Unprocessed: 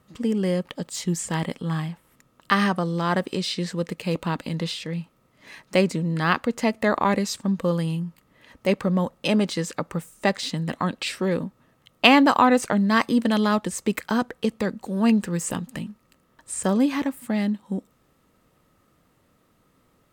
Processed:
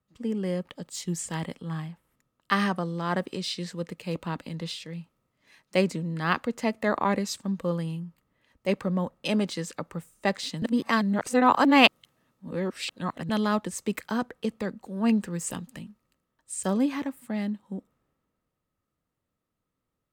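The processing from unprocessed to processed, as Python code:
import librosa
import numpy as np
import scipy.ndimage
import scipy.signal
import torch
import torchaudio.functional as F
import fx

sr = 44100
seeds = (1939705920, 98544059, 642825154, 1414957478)

y = fx.edit(x, sr, fx.reverse_span(start_s=10.62, length_s=2.67), tone=tone)
y = fx.band_widen(y, sr, depth_pct=40)
y = y * librosa.db_to_amplitude(-5.0)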